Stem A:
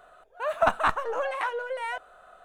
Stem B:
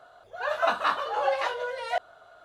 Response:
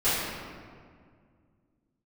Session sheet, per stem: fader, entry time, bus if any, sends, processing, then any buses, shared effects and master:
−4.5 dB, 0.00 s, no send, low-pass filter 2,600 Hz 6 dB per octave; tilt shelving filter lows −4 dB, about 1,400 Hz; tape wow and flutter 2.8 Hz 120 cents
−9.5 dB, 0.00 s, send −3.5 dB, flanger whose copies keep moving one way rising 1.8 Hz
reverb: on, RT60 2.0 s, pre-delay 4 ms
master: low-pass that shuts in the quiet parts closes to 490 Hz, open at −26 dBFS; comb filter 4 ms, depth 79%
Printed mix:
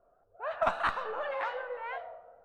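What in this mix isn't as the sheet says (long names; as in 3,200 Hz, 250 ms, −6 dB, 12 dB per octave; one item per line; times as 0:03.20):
stem B −9.5 dB → −20.0 dB
master: missing comb filter 4 ms, depth 79%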